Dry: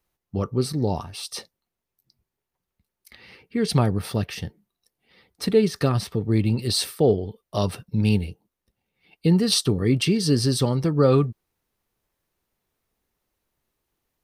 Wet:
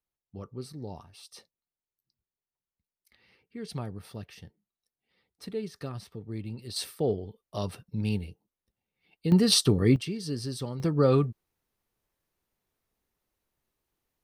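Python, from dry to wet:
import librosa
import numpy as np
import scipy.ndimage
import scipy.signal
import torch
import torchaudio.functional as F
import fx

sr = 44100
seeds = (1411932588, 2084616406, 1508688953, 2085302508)

y = fx.gain(x, sr, db=fx.steps((0.0, -16.0), (6.76, -9.0), (9.32, -1.0), (9.96, -13.0), (10.8, -4.5)))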